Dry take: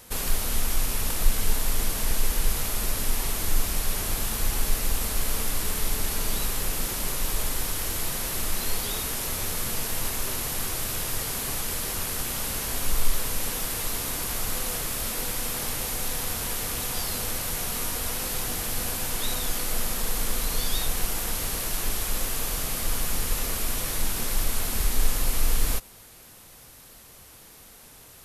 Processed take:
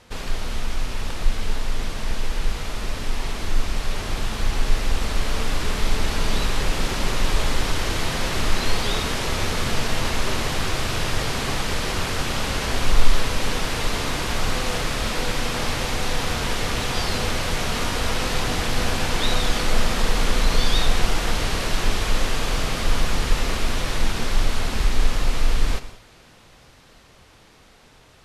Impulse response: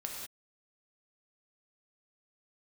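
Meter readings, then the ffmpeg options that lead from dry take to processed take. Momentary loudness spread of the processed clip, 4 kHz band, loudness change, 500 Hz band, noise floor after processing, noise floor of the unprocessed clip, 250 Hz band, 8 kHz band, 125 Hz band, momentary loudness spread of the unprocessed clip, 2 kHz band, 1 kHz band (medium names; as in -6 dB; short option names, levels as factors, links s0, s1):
7 LU, +6.0 dB, +2.5 dB, +8.0 dB, -51 dBFS, -49 dBFS, +8.0 dB, -4.0 dB, +7.5 dB, 1 LU, +8.0 dB, +8.0 dB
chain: -filter_complex "[0:a]lowpass=4400,dynaudnorm=f=910:g=11:m=3.76,asplit=2[s0][s1];[1:a]atrim=start_sample=2205[s2];[s1][s2]afir=irnorm=-1:irlink=0,volume=0.447[s3];[s0][s3]amix=inputs=2:normalize=0,volume=0.841"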